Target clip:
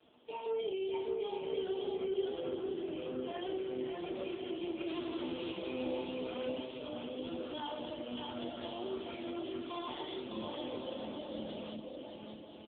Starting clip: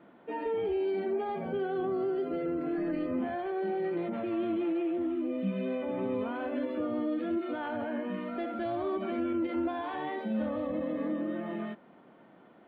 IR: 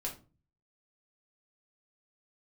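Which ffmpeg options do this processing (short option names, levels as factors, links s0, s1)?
-filter_complex "[0:a]highpass=f=170:w=0.5412,highpass=f=170:w=1.3066,asettb=1/sr,asplit=3[s0][s1][s2];[s0]atrim=end=3.274[s3];[s1]atrim=start=3.27:end=4.35,asetpts=PTS-STARTPTS,afade=t=in:d=0.004:c=qsin,afade=t=out:st=1.076:d=0.004:c=qsin,acontrast=69[s4];[s2]atrim=start=4.346[s5];[s3][s4]acrossfade=d=0.004:c1=hsin:c2=qsin[s6];[s6][s5]acrossfade=d=0.004:c1=qsin:c2=hsin,alimiter=level_in=1.12:limit=0.0631:level=0:latency=1:release=221,volume=0.891,acrossover=split=250[s7][s8];[s7]acompressor=threshold=0.00355:ratio=4[s9];[s9][s8]amix=inputs=2:normalize=0,asplit=3[s10][s11][s12];[s10]afade=t=out:st=4.86:d=0.02[s13];[s11]aeval=exprs='0.0531*(cos(1*acos(clip(val(0)/0.0531,-1,1)))-cos(1*PI/2))+0.0106*(cos(2*acos(clip(val(0)/0.0531,-1,1)))-cos(2*PI/2))+0.00668*(cos(6*acos(clip(val(0)/0.0531,-1,1)))-cos(6*PI/2))+0.0119*(cos(7*acos(clip(val(0)/0.0531,-1,1)))-cos(7*PI/2))+0.000841*(cos(8*acos(clip(val(0)/0.0531,-1,1)))-cos(8*PI/2))':c=same,afade=t=in:st=4.86:d=0.02,afade=t=out:st=5.52:d=0.02[s14];[s12]afade=t=in:st=5.52:d=0.02[s15];[s13][s14][s15]amix=inputs=3:normalize=0,asettb=1/sr,asplit=3[s16][s17][s18];[s16]atrim=end=7.164[s19];[s17]atrim=start=7.16:end=7.91,asetpts=PTS-STARTPTS,afade=t=in:d=0.004:c=qsin,afade=t=out:st=0.746:d=0.004:c=qsin,aeval=exprs='sgn(val(0))*max(abs(val(0))-0.00224,0)':c=same[s20];[s18]atrim=start=7.906[s21];[s19][s20]acrossfade=d=0.004:c1=hsin:c2=qsin[s22];[s22][s21]acrossfade=d=0.004:c1=qsin:c2=hsin,aexciter=amount=14.8:drive=5.4:freq=2900,aecho=1:1:600|990|1244|1408|1515:0.631|0.398|0.251|0.158|0.1[s23];[1:a]atrim=start_sample=2205,asetrate=79380,aresample=44100[s24];[s23][s24]afir=irnorm=-1:irlink=0,volume=0.794" -ar 8000 -c:a libopencore_amrnb -b:a 5900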